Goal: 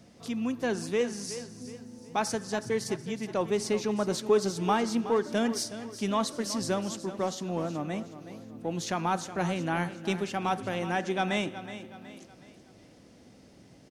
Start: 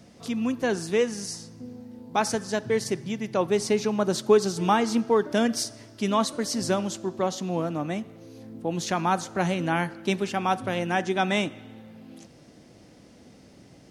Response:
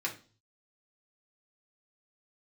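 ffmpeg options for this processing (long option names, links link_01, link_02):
-filter_complex "[0:a]asplit=2[link_01][link_02];[link_02]asoftclip=type=tanh:threshold=-23dB,volume=-10dB[link_03];[link_01][link_03]amix=inputs=2:normalize=0,aecho=1:1:370|740|1110|1480:0.224|0.0918|0.0376|0.0154,volume=-6dB"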